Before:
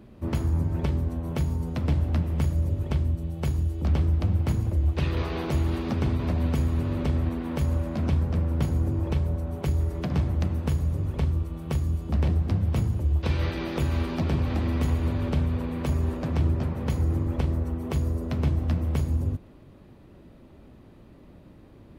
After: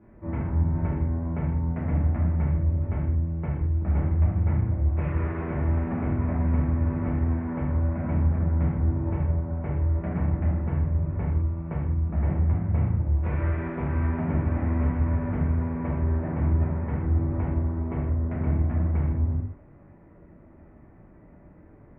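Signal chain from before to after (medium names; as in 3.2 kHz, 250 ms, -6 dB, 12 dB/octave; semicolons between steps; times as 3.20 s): elliptic low-pass 2.1 kHz, stop band 60 dB; gated-style reverb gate 230 ms falling, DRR -8 dB; trim -8 dB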